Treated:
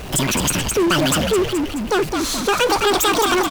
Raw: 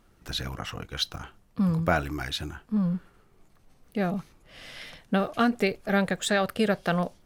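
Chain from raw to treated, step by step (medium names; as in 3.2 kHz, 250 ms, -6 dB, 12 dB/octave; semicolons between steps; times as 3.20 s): in parallel at -2.5 dB: compressor with a negative ratio -31 dBFS; on the sum: frequency-shifting echo 440 ms, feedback 40%, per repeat -36 Hz, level -7 dB; power-law waveshaper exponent 0.5; wide varispeed 2.07×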